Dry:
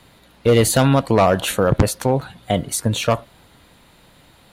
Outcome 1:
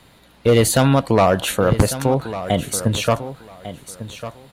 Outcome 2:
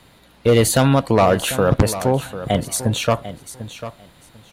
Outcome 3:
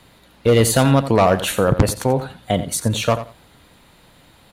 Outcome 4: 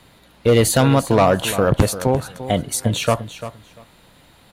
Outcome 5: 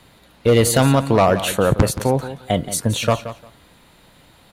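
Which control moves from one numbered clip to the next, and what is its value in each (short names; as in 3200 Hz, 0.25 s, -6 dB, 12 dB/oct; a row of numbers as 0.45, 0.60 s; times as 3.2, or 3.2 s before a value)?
feedback echo, time: 1149, 746, 87, 345, 175 ms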